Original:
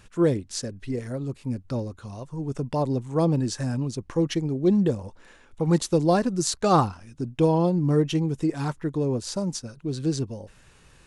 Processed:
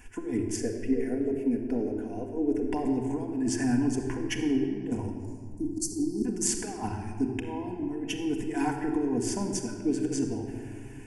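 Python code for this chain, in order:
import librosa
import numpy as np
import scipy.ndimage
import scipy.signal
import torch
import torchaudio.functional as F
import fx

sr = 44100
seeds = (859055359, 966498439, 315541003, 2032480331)

y = fx.graphic_eq(x, sr, hz=(125, 500, 1000, 4000, 8000), db=(-11, 11, -11, -6, -9), at=(0.56, 2.69))
y = fx.spec_erase(y, sr, start_s=5.12, length_s=1.13, low_hz=410.0, high_hz=4000.0)
y = fx.over_compress(y, sr, threshold_db=-26.0, ratio=-0.5)
y = fx.fixed_phaser(y, sr, hz=810.0, stages=8)
y = fx.room_shoebox(y, sr, seeds[0], volume_m3=3700.0, walls='mixed', distance_m=1.9)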